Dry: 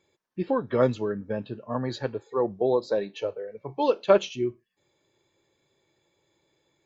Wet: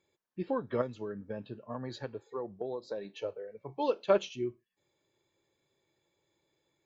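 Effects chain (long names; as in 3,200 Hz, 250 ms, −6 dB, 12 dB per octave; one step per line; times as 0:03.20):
0:00.81–0:03.05: downward compressor 6 to 1, threshold −27 dBFS, peak gain reduction 10.5 dB
level −7 dB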